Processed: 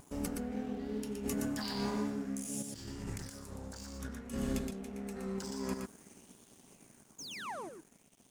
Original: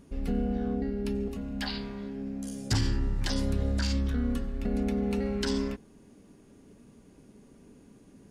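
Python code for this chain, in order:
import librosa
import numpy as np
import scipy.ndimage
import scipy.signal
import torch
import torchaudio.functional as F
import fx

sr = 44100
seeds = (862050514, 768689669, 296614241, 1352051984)

p1 = fx.doppler_pass(x, sr, speed_mps=11, closest_m=14.0, pass_at_s=3.15)
p2 = scipy.signal.sosfilt(scipy.signal.butter(2, 100.0, 'highpass', fs=sr, output='sos'), p1)
p3 = fx.high_shelf_res(p2, sr, hz=5000.0, db=12.0, q=1.5)
p4 = fx.over_compress(p3, sr, threshold_db=-43.0, ratio=-1.0)
p5 = fx.spec_paint(p4, sr, seeds[0], shape='fall', start_s=7.18, length_s=0.51, low_hz=290.0, high_hz=7000.0, level_db=-46.0)
p6 = fx.wow_flutter(p5, sr, seeds[1], rate_hz=2.1, depth_cents=45.0)
p7 = np.sign(p6) * np.maximum(np.abs(p6) - 10.0 ** (-56.0 / 20.0), 0.0)
p8 = p7 + fx.echo_single(p7, sr, ms=119, db=-4.5, dry=0)
p9 = fx.bell_lfo(p8, sr, hz=0.54, low_hz=900.0, high_hz=3500.0, db=7)
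y = p9 * 10.0 ** (2.5 / 20.0)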